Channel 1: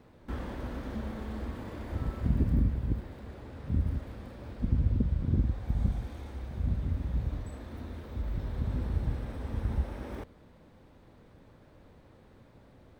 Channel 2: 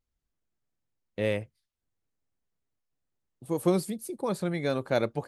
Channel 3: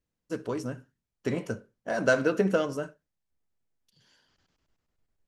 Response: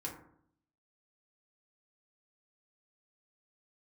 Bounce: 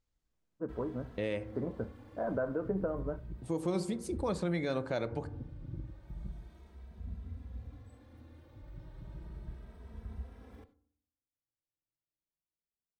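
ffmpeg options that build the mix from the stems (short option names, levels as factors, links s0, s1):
-filter_complex "[0:a]agate=range=0.0178:threshold=0.00398:ratio=16:detection=peak,asplit=2[s0][s1];[s1]adelay=2.7,afreqshift=0.33[s2];[s0][s2]amix=inputs=2:normalize=1,adelay=400,volume=0.237,asplit=2[s3][s4];[s4]volume=0.251[s5];[1:a]lowpass=f=8200:w=0.5412,lowpass=f=8200:w=1.3066,volume=0.891,asplit=2[s6][s7];[s7]volume=0.398[s8];[2:a]lowpass=f=1200:w=0.5412,lowpass=f=1200:w=1.3066,adelay=300,volume=0.596[s9];[3:a]atrim=start_sample=2205[s10];[s5][s8]amix=inputs=2:normalize=0[s11];[s11][s10]afir=irnorm=-1:irlink=0[s12];[s3][s6][s9][s12]amix=inputs=4:normalize=0,alimiter=limit=0.0668:level=0:latency=1:release=230"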